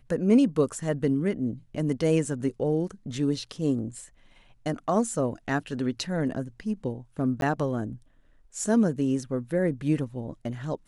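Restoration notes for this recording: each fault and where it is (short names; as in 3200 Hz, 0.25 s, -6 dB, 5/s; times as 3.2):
7.41–7.42 gap 12 ms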